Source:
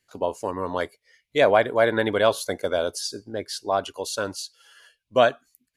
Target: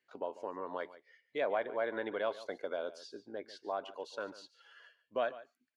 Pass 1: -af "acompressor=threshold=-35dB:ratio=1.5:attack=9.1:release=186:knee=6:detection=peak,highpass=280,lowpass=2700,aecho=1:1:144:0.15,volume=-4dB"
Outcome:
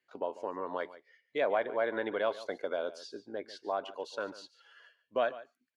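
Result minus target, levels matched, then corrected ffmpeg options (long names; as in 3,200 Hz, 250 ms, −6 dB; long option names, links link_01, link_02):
downward compressor: peak gain reduction −3.5 dB
-af "acompressor=threshold=-46dB:ratio=1.5:attack=9.1:release=186:knee=6:detection=peak,highpass=280,lowpass=2700,aecho=1:1:144:0.15,volume=-4dB"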